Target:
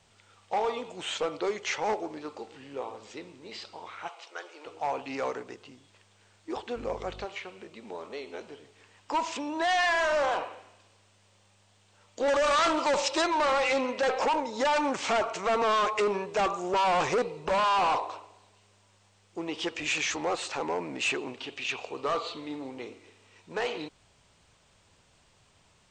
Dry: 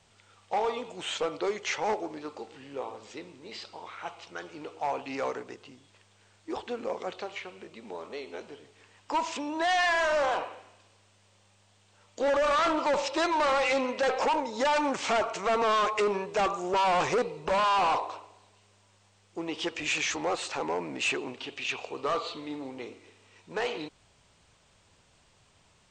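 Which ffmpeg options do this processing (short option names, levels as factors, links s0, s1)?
-filter_complex "[0:a]asplit=3[s0][s1][s2];[s0]afade=t=out:st=4.07:d=0.02[s3];[s1]highpass=f=430:w=0.5412,highpass=f=430:w=1.3066,afade=t=in:st=4.07:d=0.02,afade=t=out:st=4.65:d=0.02[s4];[s2]afade=t=in:st=4.65:d=0.02[s5];[s3][s4][s5]amix=inputs=3:normalize=0,asettb=1/sr,asplit=3[s6][s7][s8];[s6]atrim=end=6.764[s9];[s7]atrim=start=6.76:end=7.25,asetpts=PTS-STARTPTS,afade=t=in:d=0.004:c=qsin,afade=t=out:st=0.486:d=0.004:c=qsin,aeval=exprs='val(0)+0.00562*(sin(2*PI*50*n/s)+sin(2*PI*2*50*n/s)/2+sin(2*PI*3*50*n/s)/3+sin(2*PI*4*50*n/s)/4+sin(2*PI*5*50*n/s)/5)':c=same[s10];[s8]atrim=start=7.246[s11];[s9][s10]acrossfade=d=0.004:c1=hsin:c2=qsin[s12];[s12][s11]acrossfade=d=0.004:c1=qsin:c2=hsin,asettb=1/sr,asplit=3[s13][s14][s15];[s13]atrim=end=12.284[s16];[s14]atrim=start=12.28:end=13.22,asetpts=PTS-STARTPTS,afade=t=in:d=0.004:c=qsin,afade=t=out:st=0.936:d=0.004:c=qsin,highshelf=f=3800:g=9[s17];[s15]atrim=start=13.216[s18];[s16][s17]acrossfade=d=0.004:c1=hsin:c2=qsin[s19];[s19][s18]acrossfade=d=0.004:c1=qsin:c2=hsin"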